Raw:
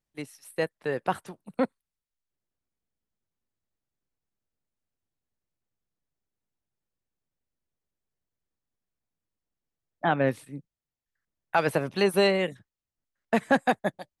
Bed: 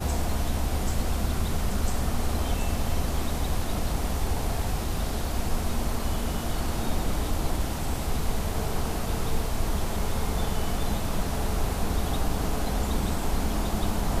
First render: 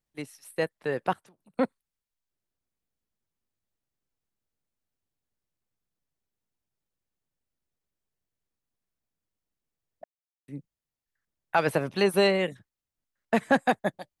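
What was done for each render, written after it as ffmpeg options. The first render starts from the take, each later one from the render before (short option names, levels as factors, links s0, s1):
-filter_complex "[0:a]asettb=1/sr,asplit=3[s0][s1][s2];[s0]atrim=end=1.134[s3];[s1]atrim=start=1.13:end=1.58,asetpts=PTS-STARTPTS,afade=t=in:d=0.004:c=qsin,afade=t=out:st=0.446:d=0.004:c=qsin,acompressor=threshold=0.00158:ratio=6:attack=3.2:release=140:knee=1:detection=peak[s4];[s2]atrim=start=1.576[s5];[s3][s4]acrossfade=d=0.004:c1=hsin:c2=qsin[s6];[s6][s5]acrossfade=d=0.004:c1=qsin:c2=hsin,asplit=3[s7][s8][s9];[s7]atrim=end=10.04,asetpts=PTS-STARTPTS,afade=t=out:st=10.036:d=0.004:c=hsin[s10];[s8]atrim=start=10.04:end=10.48,asetpts=PTS-STARTPTS,volume=0[s11];[s9]atrim=start=10.48,asetpts=PTS-STARTPTS,afade=t=in:d=0.004:c=hsin[s12];[s10][s11][s12]concat=n=3:v=0:a=1"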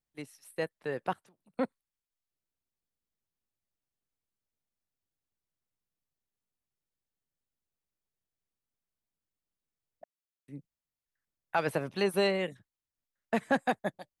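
-af "volume=0.531"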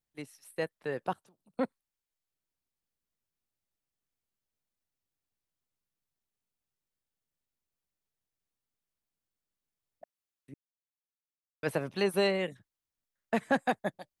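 -filter_complex "[0:a]asettb=1/sr,asplit=3[s0][s1][s2];[s0]atrim=end=1.044[s3];[s1]atrim=start=1.04:end=1.61,asetpts=PTS-STARTPTS,afade=t=in:d=0.004:c=qsin,afade=t=out:st=0.566:d=0.004:c=qsin,equalizer=f=2000:w=2:g=-8.5[s4];[s2]atrim=start=1.606[s5];[s3][s4]acrossfade=d=0.004:c1=hsin:c2=qsin[s6];[s6][s5]acrossfade=d=0.004:c1=qsin:c2=hsin,asplit=3[s7][s8][s9];[s7]atrim=end=10.54,asetpts=PTS-STARTPTS,afade=t=out:st=10.536:d=0.004:c=hsin[s10];[s8]atrim=start=10.54:end=11.63,asetpts=PTS-STARTPTS,volume=0[s11];[s9]atrim=start=11.63,asetpts=PTS-STARTPTS,afade=t=in:d=0.004:c=hsin[s12];[s10][s11][s12]concat=n=3:v=0:a=1"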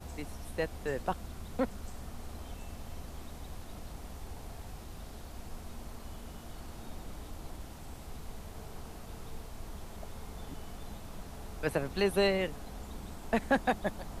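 -filter_complex "[1:a]volume=0.141[s0];[0:a][s0]amix=inputs=2:normalize=0"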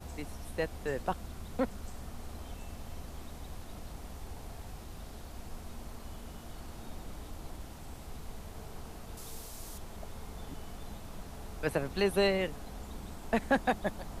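-filter_complex "[0:a]asettb=1/sr,asplit=3[s0][s1][s2];[s0]atrim=end=9.174[s3];[s1]atrim=start=9.17:end=9.78,asetpts=PTS-STARTPTS,afade=t=in:d=0.004:c=qsin,afade=t=out:st=0.606:d=0.004:c=qsin,bass=f=250:g=-3,treble=f=4000:g=11[s4];[s2]atrim=start=9.776[s5];[s3][s4]acrossfade=d=0.004:c1=hsin:c2=qsin[s6];[s6][s5]acrossfade=d=0.004:c1=qsin:c2=hsin"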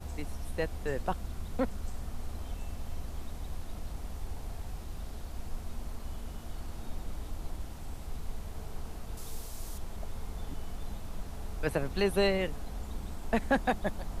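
-af "lowshelf=f=72:g=9"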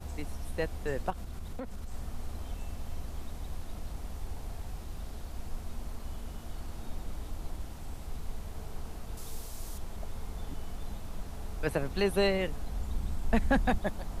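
-filter_complex "[0:a]asettb=1/sr,asplit=3[s0][s1][s2];[s0]atrim=end=1.104[s3];[s1]atrim=start=1.1:end=1.92,asetpts=PTS-STARTPTS,afade=t=in:d=0.004:c=qsin,afade=t=out:st=0.816:d=0.004:c=qsin,acompressor=threshold=0.02:ratio=6:attack=3.2:release=140:knee=1:detection=peak[s4];[s2]atrim=start=1.916[s5];[s3][s4]acrossfade=d=0.004:c1=hsin:c2=qsin[s6];[s6][s5]acrossfade=d=0.004:c1=qsin:c2=hsin,asettb=1/sr,asplit=3[s7][s8][s9];[s7]atrim=end=12.414[s10];[s8]atrim=start=12.41:end=13.78,asetpts=PTS-STARTPTS,afade=t=in:d=0.004:c=qsin,afade=t=out:st=1.366:d=0.004:c=qsin,asubboost=boost=5:cutoff=240[s11];[s9]atrim=start=13.776[s12];[s10][s11]acrossfade=d=0.004:c1=hsin:c2=qsin[s13];[s13][s12]acrossfade=d=0.004:c1=qsin:c2=hsin"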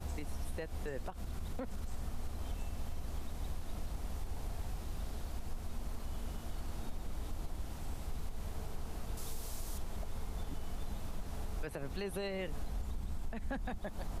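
-af "acompressor=threshold=0.0282:ratio=5,alimiter=level_in=1.88:limit=0.0631:level=0:latency=1:release=125,volume=0.531"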